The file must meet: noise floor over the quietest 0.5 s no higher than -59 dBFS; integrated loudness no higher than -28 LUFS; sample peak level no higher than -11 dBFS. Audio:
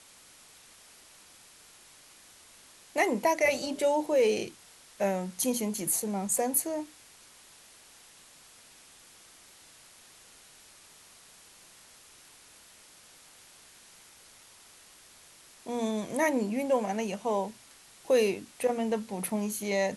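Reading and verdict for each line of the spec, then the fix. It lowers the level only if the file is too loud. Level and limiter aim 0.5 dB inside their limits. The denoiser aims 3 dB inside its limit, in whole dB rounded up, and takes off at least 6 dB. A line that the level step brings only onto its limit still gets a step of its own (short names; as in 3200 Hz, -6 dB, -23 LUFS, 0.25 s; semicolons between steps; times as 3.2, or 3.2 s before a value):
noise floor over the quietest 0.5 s -56 dBFS: fail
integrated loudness -29.5 LUFS: OK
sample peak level -12.5 dBFS: OK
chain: denoiser 6 dB, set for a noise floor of -56 dBFS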